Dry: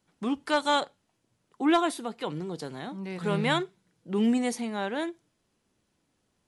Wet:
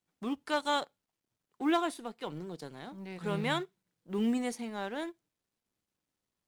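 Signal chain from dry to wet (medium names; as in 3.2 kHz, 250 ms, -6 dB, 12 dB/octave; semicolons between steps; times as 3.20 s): companding laws mixed up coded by A; trim -5 dB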